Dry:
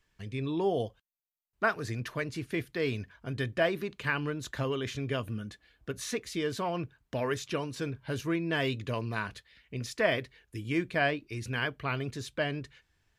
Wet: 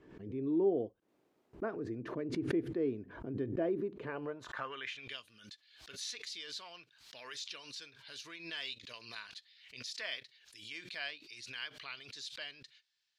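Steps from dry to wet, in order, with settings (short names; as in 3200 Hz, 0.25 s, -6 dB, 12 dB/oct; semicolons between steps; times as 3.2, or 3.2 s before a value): band-pass sweep 330 Hz -> 4300 Hz, 3.96–5.18; backwards sustainer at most 73 dB/s; gain +2 dB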